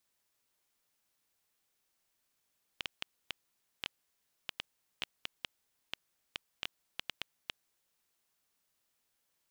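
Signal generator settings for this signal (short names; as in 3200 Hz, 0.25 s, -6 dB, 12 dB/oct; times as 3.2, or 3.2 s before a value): random clicks 3.8/s -17.5 dBFS 5.30 s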